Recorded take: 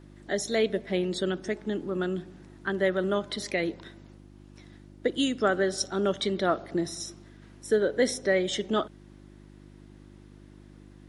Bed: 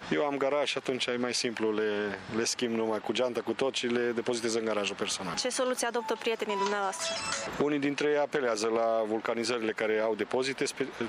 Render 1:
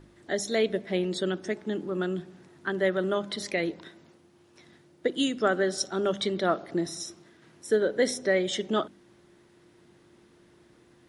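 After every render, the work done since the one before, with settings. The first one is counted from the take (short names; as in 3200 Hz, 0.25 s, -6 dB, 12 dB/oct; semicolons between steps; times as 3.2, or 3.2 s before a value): de-hum 50 Hz, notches 6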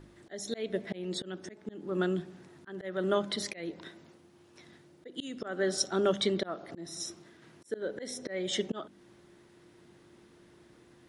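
auto swell 0.31 s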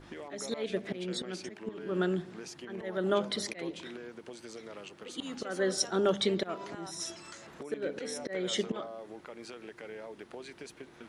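add bed -16 dB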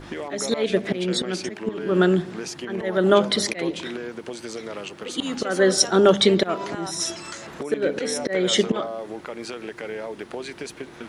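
gain +12 dB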